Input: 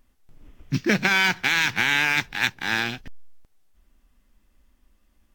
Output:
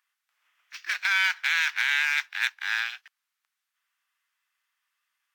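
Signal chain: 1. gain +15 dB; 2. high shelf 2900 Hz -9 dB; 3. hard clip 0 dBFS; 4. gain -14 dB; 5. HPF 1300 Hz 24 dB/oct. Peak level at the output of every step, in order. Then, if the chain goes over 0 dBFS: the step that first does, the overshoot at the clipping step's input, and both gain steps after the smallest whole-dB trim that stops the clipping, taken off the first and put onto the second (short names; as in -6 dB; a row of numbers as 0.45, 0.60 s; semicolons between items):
+11.0, +9.0, 0.0, -14.0, -12.0 dBFS; step 1, 9.0 dB; step 1 +6 dB, step 4 -5 dB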